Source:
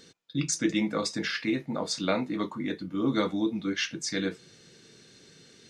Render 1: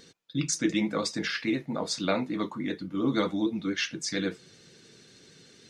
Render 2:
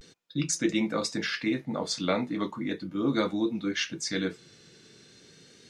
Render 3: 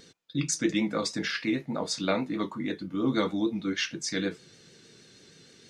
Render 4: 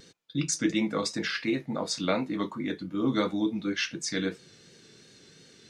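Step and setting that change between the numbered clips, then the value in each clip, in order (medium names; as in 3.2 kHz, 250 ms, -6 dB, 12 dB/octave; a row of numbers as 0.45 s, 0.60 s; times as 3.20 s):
vibrato, rate: 13 Hz, 0.38 Hz, 6.4 Hz, 2.8 Hz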